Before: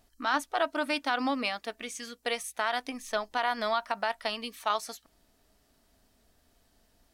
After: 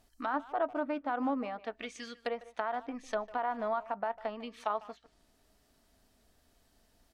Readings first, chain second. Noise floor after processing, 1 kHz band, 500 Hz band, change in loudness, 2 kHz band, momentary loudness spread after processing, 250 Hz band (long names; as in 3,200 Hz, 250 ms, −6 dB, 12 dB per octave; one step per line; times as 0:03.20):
−70 dBFS, −4.0 dB, −2.0 dB, −4.5 dB, −10.0 dB, 8 LU, −1.5 dB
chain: treble cut that deepens with the level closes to 1,000 Hz, closed at −29.5 dBFS
far-end echo of a speakerphone 150 ms, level −17 dB
level −1.5 dB